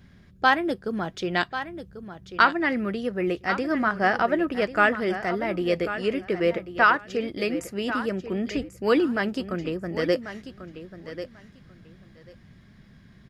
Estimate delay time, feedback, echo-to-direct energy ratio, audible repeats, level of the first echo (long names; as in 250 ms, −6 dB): 1,091 ms, 17%, −11.5 dB, 2, −11.5 dB